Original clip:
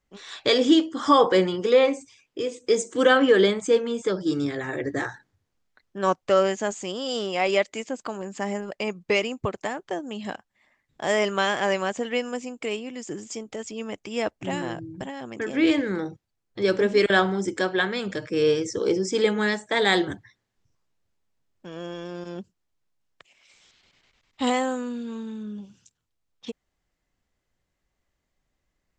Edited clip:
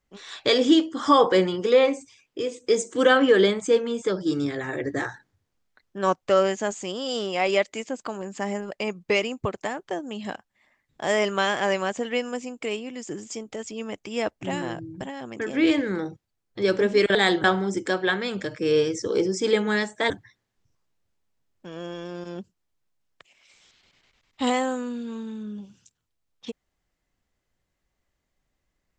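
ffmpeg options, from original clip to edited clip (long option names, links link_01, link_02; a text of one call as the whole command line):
ffmpeg -i in.wav -filter_complex "[0:a]asplit=4[link_01][link_02][link_03][link_04];[link_01]atrim=end=17.152[link_05];[link_02]atrim=start=19.808:end=20.102[link_06];[link_03]atrim=start=17.148:end=19.812[link_07];[link_04]atrim=start=20.098[link_08];[link_05][link_06]acrossfade=duration=0.004:curve1=hsin:curve2=hsin[link_09];[link_09][link_07]acrossfade=duration=0.004:curve1=hsin:curve2=hsin[link_10];[link_10][link_08]acrossfade=duration=0.004:curve1=hsin:curve2=hsin" out.wav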